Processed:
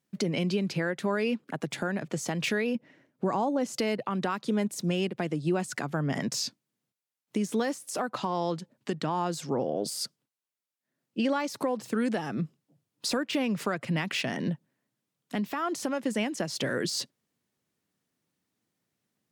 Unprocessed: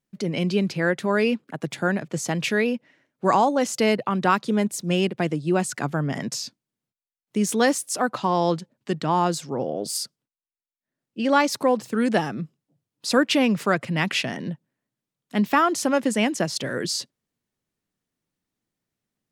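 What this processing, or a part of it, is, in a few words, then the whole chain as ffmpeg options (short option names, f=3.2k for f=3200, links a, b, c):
podcast mastering chain: -filter_complex "[0:a]asettb=1/sr,asplit=3[a][b][c];[a]atrim=end=2.754[d];[b]atrim=start=2.75:end=3.76,asetpts=PTS-STARTPTS,afade=t=in:d=0.004:c=qsin,afade=t=out:st=1.006:d=0.004:c=qsin,tiltshelf=f=690:g=5[e];[c]atrim=start=3.756[f];[d][e]acrossfade=d=0.004:c1=hsin:c2=qsin[g];[g][f]acrossfade=d=0.004:c1=qsin:c2=hsin,highpass=100,deesser=0.6,acompressor=threshold=-29dB:ratio=3,alimiter=limit=-21.5dB:level=0:latency=1:release=213,volume=3.5dB" -ar 48000 -c:a libmp3lame -b:a 128k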